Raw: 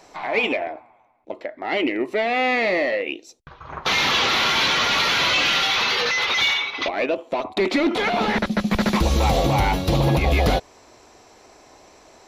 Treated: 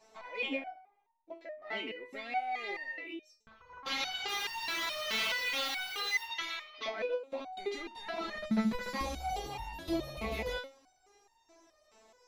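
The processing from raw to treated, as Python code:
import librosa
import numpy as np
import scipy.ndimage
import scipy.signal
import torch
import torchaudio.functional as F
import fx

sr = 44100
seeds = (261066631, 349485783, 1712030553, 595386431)

y = fx.quant_dither(x, sr, seeds[0], bits=6, dither='triangular', at=(4.27, 6.22), fade=0.02)
y = fx.resonator_held(y, sr, hz=4.7, low_hz=220.0, high_hz=920.0)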